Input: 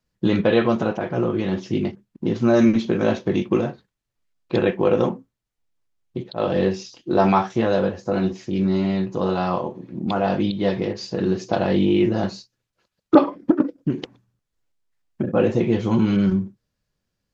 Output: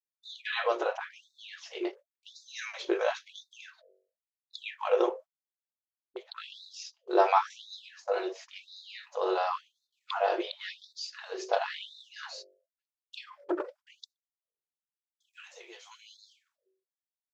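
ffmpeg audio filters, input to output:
-filter_complex "[0:a]agate=range=-22dB:threshold=-37dB:ratio=16:detection=peak,asettb=1/sr,asplit=3[a][b][c];[a]atrim=end=15.294[d];[b]atrim=start=15.29:end=16.16,asetpts=PTS-STARTPTS,afade=t=in:d=0.004:c=qsin,afade=t=out:st=0.866:d=0.004:c=qsin,aderivative[e];[c]atrim=start=16.156[f];[d][e]acrossfade=d=0.004:c1=hsin:c2=qsin[g];[g][f]acrossfade=d=0.004:c1=qsin:c2=hsin,bandreject=f=47.53:t=h:w=4,bandreject=f=95.06:t=h:w=4,bandreject=f=142.59:t=h:w=4,bandreject=f=190.12:t=h:w=4,bandreject=f=237.65:t=h:w=4,bandreject=f=285.18:t=h:w=4,bandreject=f=332.71:t=h:w=4,bandreject=f=380.24:t=h:w=4,bandreject=f=427.77:t=h:w=4,bandreject=f=475.3:t=h:w=4,bandreject=f=522.83:t=h:w=4,bandreject=f=570.36:t=h:w=4,bandreject=f=617.89:t=h:w=4,bandreject=f=665.42:t=h:w=4,afftfilt=real='re*gte(b*sr/1024,330*pow(3600/330,0.5+0.5*sin(2*PI*0.94*pts/sr)))':imag='im*gte(b*sr/1024,330*pow(3600/330,0.5+0.5*sin(2*PI*0.94*pts/sr)))':win_size=1024:overlap=0.75,volume=-4dB"

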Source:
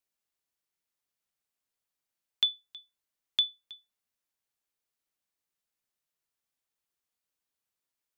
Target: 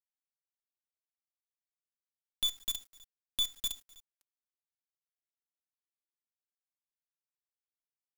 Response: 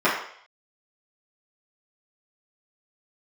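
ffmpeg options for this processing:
-filter_complex "[0:a]asplit=2[a][b];[b]acompressor=threshold=-35dB:ratio=12,volume=-2.5dB[c];[a][c]amix=inputs=2:normalize=0,aeval=exprs='(tanh(20*val(0)+0.55)-tanh(0.55))/20':c=same,asplit=2[d][e];[e]adelay=252,lowpass=f=3.3k:p=1,volume=-8dB,asplit=2[f][g];[g]adelay=252,lowpass=f=3.3k:p=1,volume=0.36,asplit=2[h][i];[i]adelay=252,lowpass=f=3.3k:p=1,volume=0.36,asplit=2[j][k];[k]adelay=252,lowpass=f=3.3k:p=1,volume=0.36[l];[d][f][h][j][l]amix=inputs=5:normalize=0,asplit=2[m][n];[1:a]atrim=start_sample=2205,afade=t=out:st=0.31:d=0.01,atrim=end_sample=14112,lowpass=5.1k[o];[n][o]afir=irnorm=-1:irlink=0,volume=-22.5dB[p];[m][p]amix=inputs=2:normalize=0,acrusher=bits=7:dc=4:mix=0:aa=0.000001,aecho=1:1:3.7:0.61,alimiter=limit=-23.5dB:level=0:latency=1:release=155,highshelf=f=5.8k:g=9"

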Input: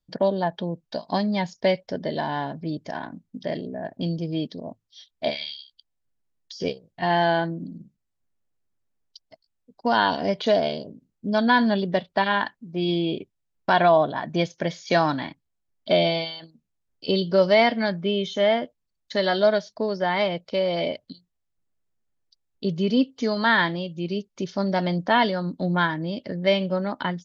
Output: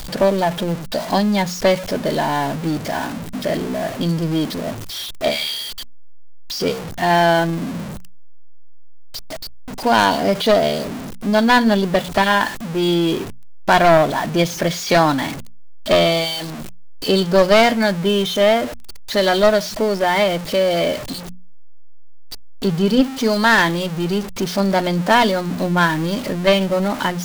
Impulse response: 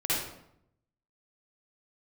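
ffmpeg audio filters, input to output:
-filter_complex "[0:a]aeval=exprs='val(0)+0.5*0.0335*sgn(val(0))':c=same,bandreject=f=60:t=h:w=6,bandreject=f=120:t=h:w=6,bandreject=f=180:t=h:w=6,bandreject=f=240:t=h:w=6,asplit=2[a][b];[b]asoftclip=type=tanh:threshold=-14.5dB,volume=-9dB[c];[a][c]amix=inputs=2:normalize=0,aeval=exprs='0.562*(cos(1*acos(clip(val(0)/0.562,-1,1)))-cos(1*PI/2))+0.2*(cos(4*acos(clip(val(0)/0.562,-1,1)))-cos(4*PI/2))+0.0355*(cos(5*acos(clip(val(0)/0.562,-1,1)))-cos(5*PI/2))+0.1*(cos(6*acos(clip(val(0)/0.562,-1,1)))-cos(6*PI/2))':c=same,volume=1dB"

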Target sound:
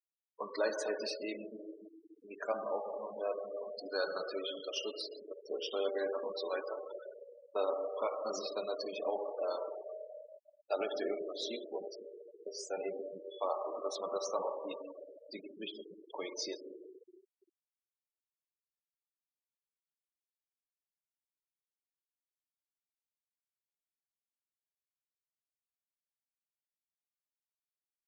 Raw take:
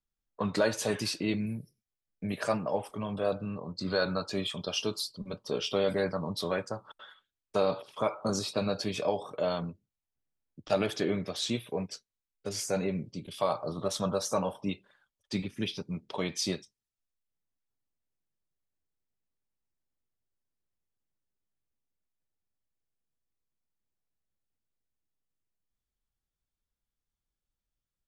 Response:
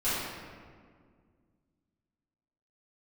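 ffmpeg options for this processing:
-filter_complex "[0:a]highpass=f=330:w=0.5412,highpass=f=330:w=1.3066,aecho=1:1:137|274|411|548:0.15|0.0628|0.0264|0.0111,asplit=2[a][b];[1:a]atrim=start_sample=2205,asetrate=22932,aresample=44100,highshelf=f=11k:g=-11.5[c];[b][c]afir=irnorm=-1:irlink=0,volume=-17.5dB[d];[a][d]amix=inputs=2:normalize=0,afftfilt=real='re*gte(hypot(re,im),0.0316)':imag='im*gte(hypot(re,im),0.0316)':win_size=1024:overlap=0.75,volume=-7.5dB"

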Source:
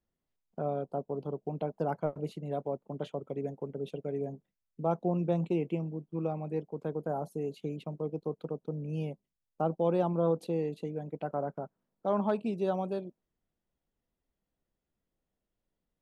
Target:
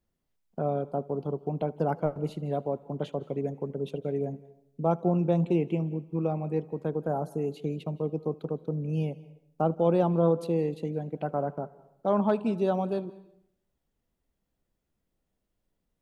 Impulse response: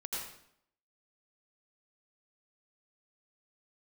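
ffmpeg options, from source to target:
-filter_complex "[0:a]lowshelf=f=200:g=3.5,asplit=2[a][b];[1:a]atrim=start_sample=2205,adelay=77[c];[b][c]afir=irnorm=-1:irlink=0,volume=-19.5dB[d];[a][d]amix=inputs=2:normalize=0,volume=3.5dB"

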